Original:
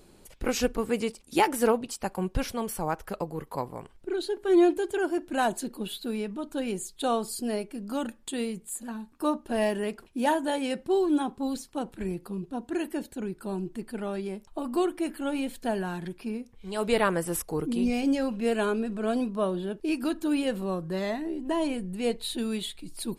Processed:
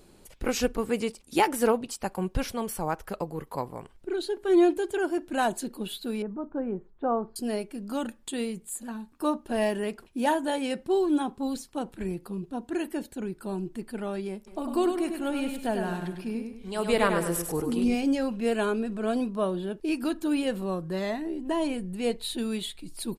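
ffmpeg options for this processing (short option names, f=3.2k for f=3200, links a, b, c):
-filter_complex "[0:a]asettb=1/sr,asplit=3[a][b][c];[a]atrim=end=6.224[d];[b]atrim=start=6.22:end=7.36,asetpts=PTS-STARTPTS,afade=t=in:d=0.004:c=qsin,afade=t=out:st=1.136:d=0.004:c=qsin,lowpass=f=1.4k:w=0.5412,lowpass=f=1.4k:w=1.3066[e];[c]atrim=start=7.356[f];[d][e]acrossfade=d=0.004:c1=hsin:c2=qsin[g];[g][f]acrossfade=d=0.004:c1=qsin:c2=hsin,asplit=3[h][i][j];[h]afade=t=out:st=14.46:d=0.02[k];[i]aecho=1:1:100|200|300|400|500:0.501|0.19|0.0724|0.0275|0.0105,afade=t=in:st=14.46:d=0.02,afade=t=out:st=17.94:d=0.02[l];[j]afade=t=in:st=17.94:d=0.02[m];[k][l][m]amix=inputs=3:normalize=0"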